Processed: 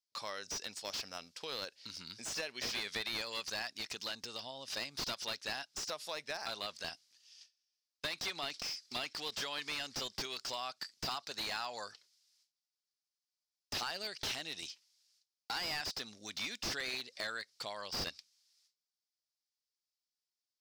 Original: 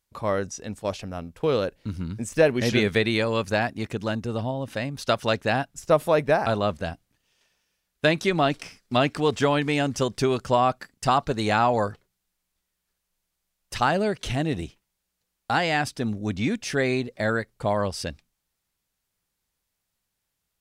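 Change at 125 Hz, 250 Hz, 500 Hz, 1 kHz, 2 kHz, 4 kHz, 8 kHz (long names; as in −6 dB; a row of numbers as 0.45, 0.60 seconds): −27.5, −25.5, −23.5, −19.0, −13.0, −4.5, −5.0 decibels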